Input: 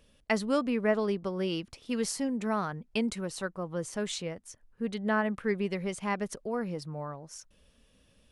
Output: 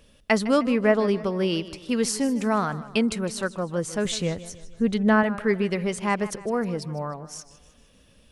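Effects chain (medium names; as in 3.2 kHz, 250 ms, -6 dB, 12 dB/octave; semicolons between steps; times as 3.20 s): 4.05–5.23 s: bass shelf 160 Hz +11.5 dB; modulated delay 154 ms, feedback 48%, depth 108 cents, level -16 dB; trim +7 dB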